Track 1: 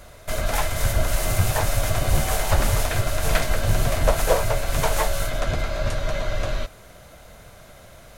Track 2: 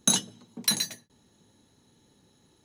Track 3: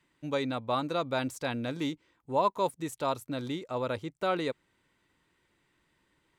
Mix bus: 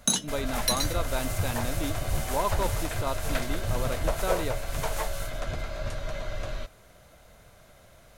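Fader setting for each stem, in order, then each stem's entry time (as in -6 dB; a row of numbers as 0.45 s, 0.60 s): -8.5 dB, -2.0 dB, -2.0 dB; 0.00 s, 0.00 s, 0.00 s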